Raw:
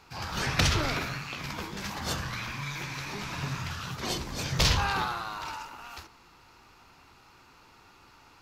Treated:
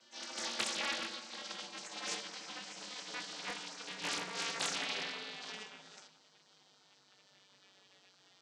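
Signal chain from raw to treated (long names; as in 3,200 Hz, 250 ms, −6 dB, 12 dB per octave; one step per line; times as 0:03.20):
vocoder with a gliding carrier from D4, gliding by −8 semitones
parametric band 1,100 Hz −7.5 dB 0.42 octaves
in parallel at −1 dB: brickwall limiter −25 dBFS, peak gain reduction 10.5 dB
on the sum: low-shelf EQ 190 Hz −12 dB
gate on every frequency bin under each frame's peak −15 dB weak
convolution reverb RT60 1.3 s, pre-delay 7 ms, DRR 12 dB
highs frequency-modulated by the lows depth 0.46 ms
level +1 dB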